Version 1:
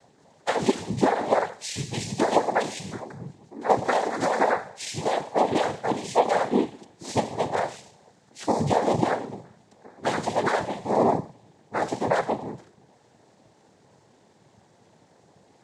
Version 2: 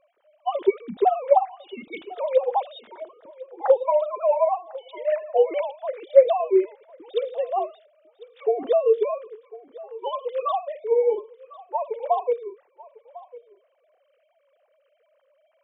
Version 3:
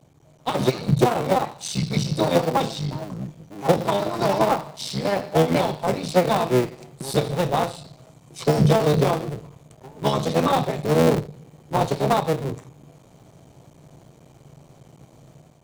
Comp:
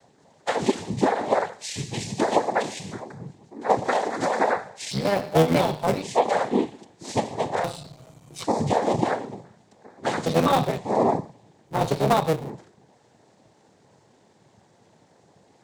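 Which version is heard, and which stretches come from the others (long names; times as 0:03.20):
1
0:04.91–0:06.02: punch in from 3
0:07.64–0:08.44: punch in from 3
0:10.26–0:10.78: punch in from 3
0:11.75–0:12.42: punch in from 3, crossfade 0.24 s
not used: 2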